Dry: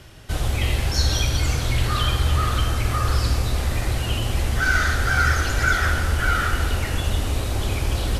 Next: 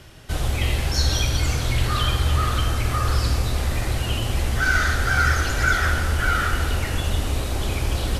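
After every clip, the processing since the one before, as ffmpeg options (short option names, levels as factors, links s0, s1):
-af "bandreject=f=50:t=h:w=6,bandreject=f=100:t=h:w=6"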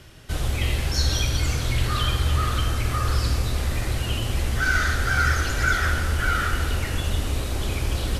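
-af "equalizer=f=780:t=o:w=0.77:g=-3,volume=0.841"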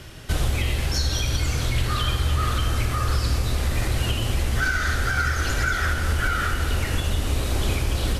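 -af "alimiter=limit=0.112:level=0:latency=1:release=475,volume=2"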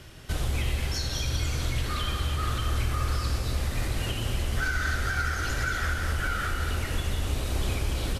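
-af "aecho=1:1:189.5|247.8:0.282|0.355,volume=0.501"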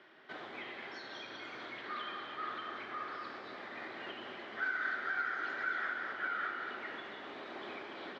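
-af "highpass=f=290:w=0.5412,highpass=f=290:w=1.3066,equalizer=f=290:t=q:w=4:g=-4,equalizer=f=500:t=q:w=4:g=-7,equalizer=f=1800:t=q:w=4:g=3,equalizer=f=2700:t=q:w=4:g=-9,lowpass=f=3100:w=0.5412,lowpass=f=3100:w=1.3066,volume=0.531"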